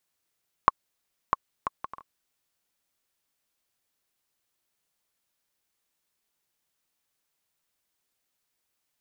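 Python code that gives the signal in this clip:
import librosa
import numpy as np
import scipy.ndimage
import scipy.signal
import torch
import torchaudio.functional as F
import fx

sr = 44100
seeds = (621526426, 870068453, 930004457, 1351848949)

y = fx.bouncing_ball(sr, first_gap_s=0.65, ratio=0.52, hz=1090.0, decay_ms=24.0, level_db=-3.0)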